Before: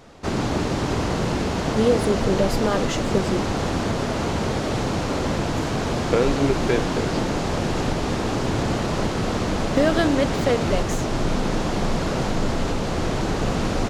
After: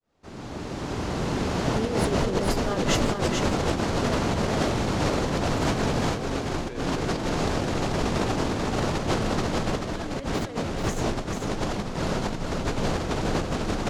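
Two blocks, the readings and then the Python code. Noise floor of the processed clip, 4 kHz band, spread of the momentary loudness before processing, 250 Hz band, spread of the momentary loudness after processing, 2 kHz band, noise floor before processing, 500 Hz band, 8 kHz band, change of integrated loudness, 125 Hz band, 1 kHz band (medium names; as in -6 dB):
-35 dBFS, -2.5 dB, 5 LU, -4.5 dB, 6 LU, -3.0 dB, -25 dBFS, -5.0 dB, -2.0 dB, -4.0 dB, -3.5 dB, -3.0 dB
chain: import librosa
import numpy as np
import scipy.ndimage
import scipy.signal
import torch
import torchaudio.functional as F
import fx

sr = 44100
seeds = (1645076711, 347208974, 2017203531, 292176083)

y = fx.fade_in_head(x, sr, length_s=3.7)
y = fx.over_compress(y, sr, threshold_db=-26.0, ratio=-0.5)
y = y + 10.0 ** (-4.5 / 20.0) * np.pad(y, (int(438 * sr / 1000.0), 0))[:len(y)]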